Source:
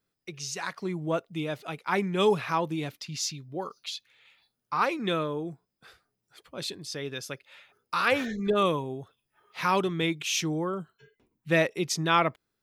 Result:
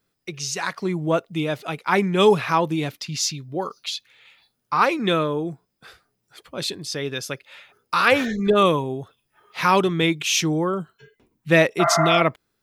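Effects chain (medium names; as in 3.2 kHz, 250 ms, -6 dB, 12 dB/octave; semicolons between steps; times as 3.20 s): spectral replace 11.83–12.19 s, 640–2100 Hz after; trim +7.5 dB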